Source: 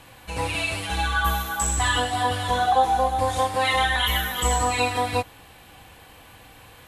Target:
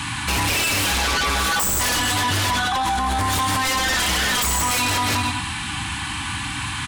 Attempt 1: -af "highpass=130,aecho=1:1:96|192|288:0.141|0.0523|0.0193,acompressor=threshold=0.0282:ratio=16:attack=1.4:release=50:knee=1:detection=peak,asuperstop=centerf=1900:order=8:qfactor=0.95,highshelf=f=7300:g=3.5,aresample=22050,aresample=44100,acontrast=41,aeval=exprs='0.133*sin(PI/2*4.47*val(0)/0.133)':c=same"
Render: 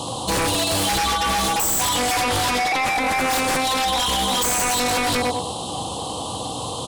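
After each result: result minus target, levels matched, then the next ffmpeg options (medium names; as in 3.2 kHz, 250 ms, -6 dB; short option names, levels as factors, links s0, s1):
500 Hz band +7.0 dB; 125 Hz band -4.5 dB
-af "highpass=130,aecho=1:1:96|192|288:0.141|0.0523|0.0193,acompressor=threshold=0.0282:ratio=16:attack=1.4:release=50:knee=1:detection=peak,asuperstop=centerf=520:order=8:qfactor=0.95,highshelf=f=7300:g=3.5,aresample=22050,aresample=44100,acontrast=41,aeval=exprs='0.133*sin(PI/2*4.47*val(0)/0.133)':c=same"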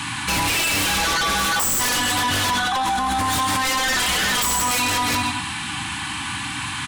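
125 Hz band -5.0 dB
-af "highpass=64,aecho=1:1:96|192|288:0.141|0.0523|0.0193,acompressor=threshold=0.0282:ratio=16:attack=1.4:release=50:knee=1:detection=peak,asuperstop=centerf=520:order=8:qfactor=0.95,highshelf=f=7300:g=3.5,aresample=22050,aresample=44100,acontrast=41,aeval=exprs='0.133*sin(PI/2*4.47*val(0)/0.133)':c=same"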